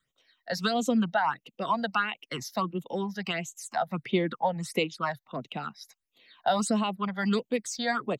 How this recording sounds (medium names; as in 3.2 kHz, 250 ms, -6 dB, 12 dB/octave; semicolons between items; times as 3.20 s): phasing stages 8, 1.5 Hz, lowest notch 330–1600 Hz